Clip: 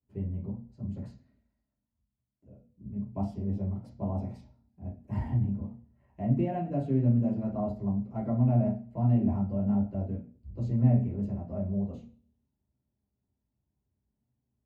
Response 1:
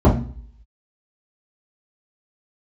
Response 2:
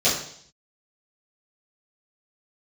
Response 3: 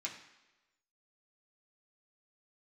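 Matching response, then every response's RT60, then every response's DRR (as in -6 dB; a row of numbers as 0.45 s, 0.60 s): 1; no single decay rate, 0.60 s, 1.1 s; -7.5 dB, -13.0 dB, -3.5 dB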